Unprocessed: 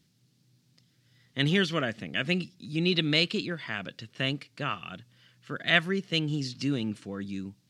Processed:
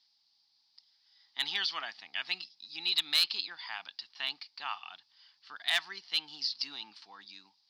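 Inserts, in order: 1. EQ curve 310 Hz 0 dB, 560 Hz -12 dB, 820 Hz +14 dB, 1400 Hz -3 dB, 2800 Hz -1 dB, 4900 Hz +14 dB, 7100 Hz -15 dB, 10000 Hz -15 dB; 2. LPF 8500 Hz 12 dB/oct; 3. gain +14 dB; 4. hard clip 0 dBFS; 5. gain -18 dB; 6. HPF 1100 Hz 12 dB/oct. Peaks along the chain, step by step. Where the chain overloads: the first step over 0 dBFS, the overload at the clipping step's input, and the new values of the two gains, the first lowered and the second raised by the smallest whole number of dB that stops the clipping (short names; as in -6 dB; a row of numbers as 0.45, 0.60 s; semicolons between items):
-5.0, -5.0, +9.0, 0.0, -18.0, -13.5 dBFS; step 3, 9.0 dB; step 3 +5 dB, step 5 -9 dB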